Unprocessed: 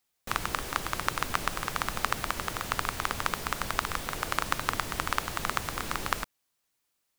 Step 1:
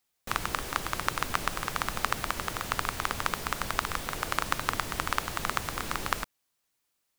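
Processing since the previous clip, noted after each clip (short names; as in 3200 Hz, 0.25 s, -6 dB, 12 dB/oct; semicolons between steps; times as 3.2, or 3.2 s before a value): nothing audible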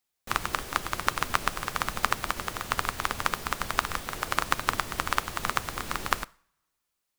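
two-slope reverb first 0.5 s, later 1.8 s, from -26 dB, DRR 15.5 dB; upward expander 1.5:1, over -40 dBFS; gain +3.5 dB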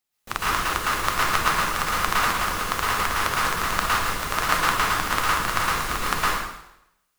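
plate-style reverb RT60 0.82 s, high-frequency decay 0.95×, pre-delay 0.1 s, DRR -7.5 dB; gain -1 dB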